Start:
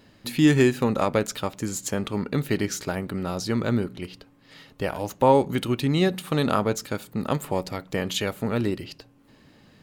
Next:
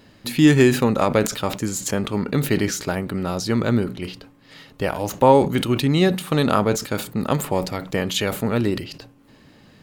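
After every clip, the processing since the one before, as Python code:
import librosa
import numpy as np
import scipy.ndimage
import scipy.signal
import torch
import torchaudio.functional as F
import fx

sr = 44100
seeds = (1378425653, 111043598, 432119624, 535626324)

y = fx.sustainer(x, sr, db_per_s=120.0)
y = F.gain(torch.from_numpy(y), 4.0).numpy()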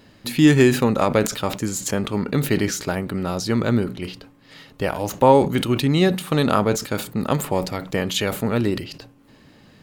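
y = x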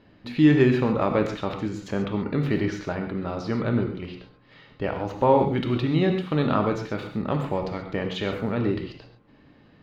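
y = fx.air_absorb(x, sr, metres=260.0)
y = fx.rev_gated(y, sr, seeds[0], gate_ms=160, shape='flat', drr_db=4.0)
y = F.gain(torch.from_numpy(y), -4.5).numpy()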